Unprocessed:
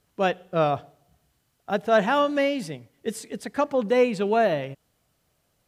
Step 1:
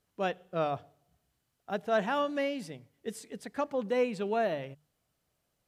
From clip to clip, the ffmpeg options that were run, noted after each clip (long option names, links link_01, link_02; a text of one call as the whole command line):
ffmpeg -i in.wav -af "bandreject=frequency=50:width_type=h:width=6,bandreject=frequency=100:width_type=h:width=6,bandreject=frequency=150:width_type=h:width=6,volume=-8.5dB" out.wav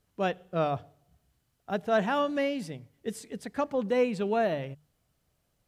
ffmpeg -i in.wav -af "lowshelf=frequency=150:gain=8.5,volume=2dB" out.wav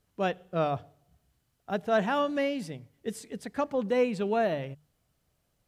ffmpeg -i in.wav -af anull out.wav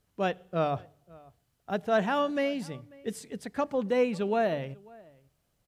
ffmpeg -i in.wav -filter_complex "[0:a]asplit=2[link_01][link_02];[link_02]adelay=542.3,volume=-24dB,highshelf=frequency=4000:gain=-12.2[link_03];[link_01][link_03]amix=inputs=2:normalize=0" out.wav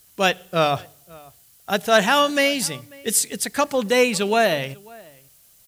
ffmpeg -i in.wav -af "crystalizer=i=9.5:c=0,volume=5.5dB" out.wav